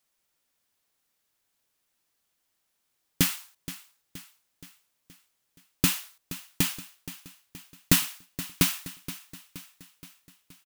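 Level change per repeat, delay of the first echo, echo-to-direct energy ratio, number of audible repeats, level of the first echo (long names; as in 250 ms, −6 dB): −5.5 dB, 473 ms, −13.5 dB, 4, −15.0 dB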